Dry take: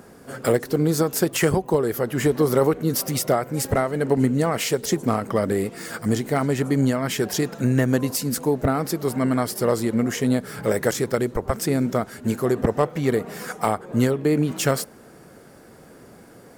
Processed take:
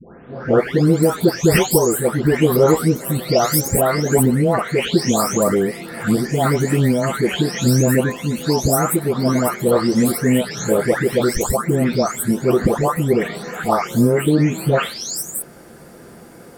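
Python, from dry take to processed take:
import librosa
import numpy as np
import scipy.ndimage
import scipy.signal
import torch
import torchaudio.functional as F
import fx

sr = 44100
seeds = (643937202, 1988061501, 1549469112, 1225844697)

y = fx.spec_delay(x, sr, highs='late', ms=580)
y = y * 10.0 ** (7.0 / 20.0)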